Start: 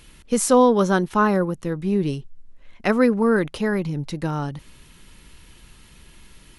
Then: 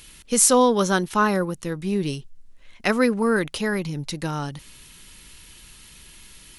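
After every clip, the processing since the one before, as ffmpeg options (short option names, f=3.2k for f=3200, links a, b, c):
-af "highshelf=f=2.2k:g=11.5,volume=-3dB"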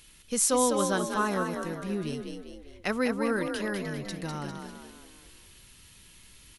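-filter_complex "[0:a]asplit=7[a][b][c][d][e][f][g];[b]adelay=200,afreqshift=41,volume=-5.5dB[h];[c]adelay=400,afreqshift=82,volume=-11.9dB[i];[d]adelay=600,afreqshift=123,volume=-18.3dB[j];[e]adelay=800,afreqshift=164,volume=-24.6dB[k];[f]adelay=1000,afreqshift=205,volume=-31dB[l];[g]adelay=1200,afreqshift=246,volume=-37.4dB[m];[a][h][i][j][k][l][m]amix=inputs=7:normalize=0,volume=-8.5dB"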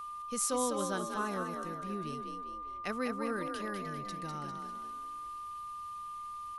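-af "aeval=exprs='val(0)+0.0251*sin(2*PI*1200*n/s)':c=same,volume=-8dB"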